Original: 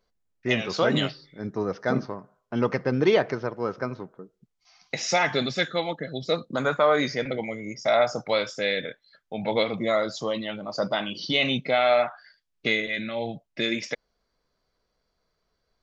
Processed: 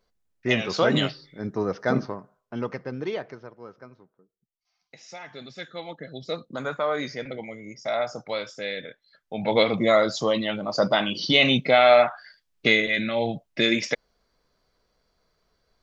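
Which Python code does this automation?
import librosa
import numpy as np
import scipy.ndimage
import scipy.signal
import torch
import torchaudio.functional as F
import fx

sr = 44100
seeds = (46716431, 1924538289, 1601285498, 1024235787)

y = fx.gain(x, sr, db=fx.line((2.1, 1.5), (2.71, -7.0), (4.16, -18.5), (5.23, -18.5), (6.04, -5.5), (8.88, -5.5), (9.67, 5.0)))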